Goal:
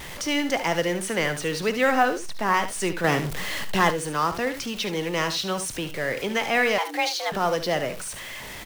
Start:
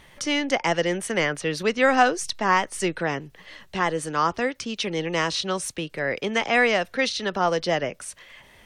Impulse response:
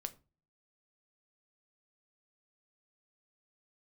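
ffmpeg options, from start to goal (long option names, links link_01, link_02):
-filter_complex "[0:a]aeval=exprs='val(0)+0.5*0.0299*sgn(val(0))':channel_layout=same,asettb=1/sr,asplit=3[link_01][link_02][link_03];[link_01]atrim=end=1.954[link_04];[link_02]atrim=start=1.95:end=2.54,asetpts=PTS-STARTPTS,afade=type=in:duration=0.004:curve=qsin,afade=type=out:start_time=0.586:duration=0.004:curve=qsin,acrossover=split=2500[link_05][link_06];[link_06]acompressor=threshold=-35dB:ratio=4:attack=1:release=60[link_07];[link_05][link_07]amix=inputs=2:normalize=0[link_08];[link_03]atrim=start=2.536[link_09];[link_04][link_08]acrossfade=duration=0.004:curve1=hsin:curve2=qsin[link_10];[link_10][link_09]acrossfade=duration=0.004:curve1=qsin:curve2=hsin,aecho=1:1:52|73:0.141|0.266,asplit=2[link_11][link_12];[1:a]atrim=start_sample=2205[link_13];[link_12][link_13]afir=irnorm=-1:irlink=0,volume=-8dB[link_14];[link_11][link_14]amix=inputs=2:normalize=0,asettb=1/sr,asplit=3[link_15][link_16][link_17];[link_15]atrim=end=3.044[link_18];[link_16]atrim=start=3.04:end=3.91,asetpts=PTS-STARTPTS,afade=type=in:duration=0.004:curve=qsin,afade=type=out:start_time=0.866:duration=0.004:curve=qsin,acontrast=55[link_19];[link_17]atrim=start=3.906[link_20];[link_18][link_19]acrossfade=duration=0.004:curve1=hsin:curve2=qsin[link_21];[link_21][link_20]acrossfade=duration=0.004:curve1=qsin:curve2=hsin,asettb=1/sr,asplit=3[link_22][link_23][link_24];[link_22]atrim=end=6.784[link_25];[link_23]atrim=start=6.78:end=7.32,asetpts=PTS-STARTPTS,afade=type=in:duration=0.004:curve=qsin,afade=type=out:start_time=0.536:duration=0.004:curve=qsin,afreqshift=290[link_26];[link_24]atrim=start=7.316[link_27];[link_25][link_26]acrossfade=duration=0.004:curve1=hsin:curve2=qsin[link_28];[link_28][link_27]acrossfade=duration=0.004:curve1=qsin:curve2=hsin,acrusher=bits=7:mode=log:mix=0:aa=0.000001,volume=-5dB"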